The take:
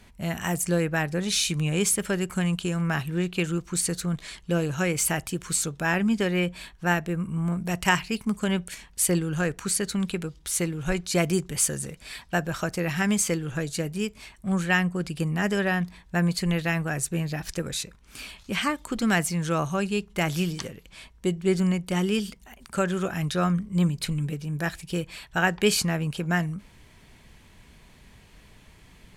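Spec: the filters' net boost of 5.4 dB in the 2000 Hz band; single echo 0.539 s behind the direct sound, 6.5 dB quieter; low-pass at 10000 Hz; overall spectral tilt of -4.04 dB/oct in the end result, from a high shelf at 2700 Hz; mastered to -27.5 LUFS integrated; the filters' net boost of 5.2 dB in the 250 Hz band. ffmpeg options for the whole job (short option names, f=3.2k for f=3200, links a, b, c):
-af "lowpass=10k,equalizer=f=250:t=o:g=8.5,equalizer=f=2k:t=o:g=3.5,highshelf=f=2.7k:g=7.5,aecho=1:1:539:0.473,volume=-6.5dB"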